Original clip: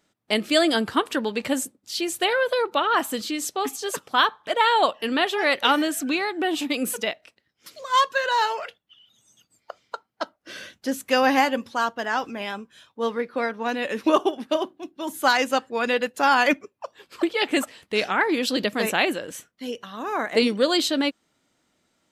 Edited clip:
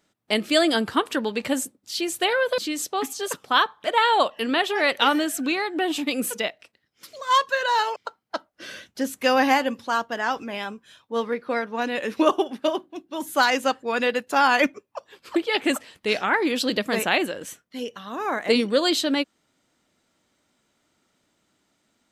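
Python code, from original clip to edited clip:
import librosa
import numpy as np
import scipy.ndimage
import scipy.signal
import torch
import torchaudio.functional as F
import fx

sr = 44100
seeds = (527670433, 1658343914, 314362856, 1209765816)

y = fx.edit(x, sr, fx.cut(start_s=2.58, length_s=0.63),
    fx.cut(start_s=8.59, length_s=1.24), tone=tone)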